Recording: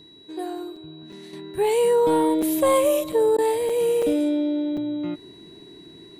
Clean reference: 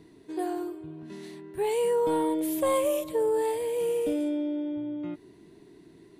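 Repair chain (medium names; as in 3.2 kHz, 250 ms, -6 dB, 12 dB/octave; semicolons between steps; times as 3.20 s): band-stop 3.9 kHz, Q 30; interpolate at 0.76/1.12/2.42/3.12/3.69/4.02/4.77 s, 5 ms; interpolate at 3.37 s, 12 ms; gain correction -6.5 dB, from 1.33 s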